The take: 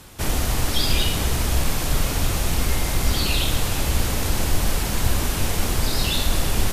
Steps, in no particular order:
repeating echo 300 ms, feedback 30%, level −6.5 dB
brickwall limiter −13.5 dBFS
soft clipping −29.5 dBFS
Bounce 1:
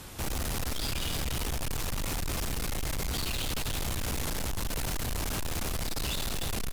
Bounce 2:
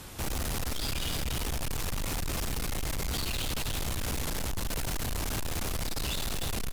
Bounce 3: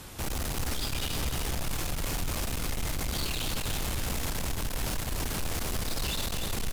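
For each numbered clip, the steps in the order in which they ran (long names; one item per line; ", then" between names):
brickwall limiter, then repeating echo, then soft clipping
repeating echo, then brickwall limiter, then soft clipping
brickwall limiter, then soft clipping, then repeating echo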